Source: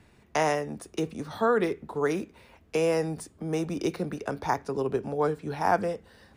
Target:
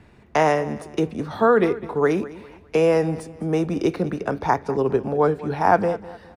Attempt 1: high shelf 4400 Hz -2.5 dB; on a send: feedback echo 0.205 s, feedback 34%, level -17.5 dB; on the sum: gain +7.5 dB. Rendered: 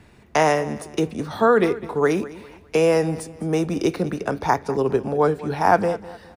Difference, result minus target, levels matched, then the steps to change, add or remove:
8000 Hz band +6.5 dB
change: high shelf 4400 Hz -12 dB

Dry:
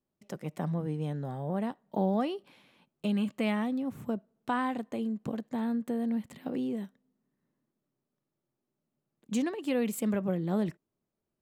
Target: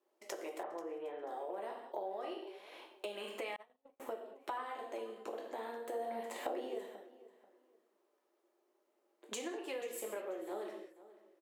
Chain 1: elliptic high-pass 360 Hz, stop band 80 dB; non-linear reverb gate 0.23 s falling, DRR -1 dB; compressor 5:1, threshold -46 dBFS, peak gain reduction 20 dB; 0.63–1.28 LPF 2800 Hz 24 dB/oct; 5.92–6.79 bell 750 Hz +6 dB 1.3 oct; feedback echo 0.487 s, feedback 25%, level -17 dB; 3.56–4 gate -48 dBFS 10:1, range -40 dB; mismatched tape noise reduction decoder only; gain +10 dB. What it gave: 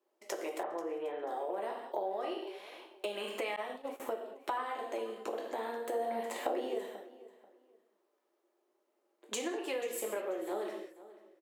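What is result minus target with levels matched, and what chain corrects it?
compressor: peak gain reduction -5 dB
elliptic high-pass 360 Hz, stop band 80 dB; non-linear reverb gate 0.23 s falling, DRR -1 dB; compressor 5:1, threshold -52.5 dBFS, peak gain reduction 25.5 dB; 0.63–1.28 LPF 2800 Hz 24 dB/oct; 5.92–6.79 bell 750 Hz +6 dB 1.3 oct; feedback echo 0.487 s, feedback 25%, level -17 dB; 3.56–4 gate -48 dBFS 10:1, range -40 dB; mismatched tape noise reduction decoder only; gain +10 dB

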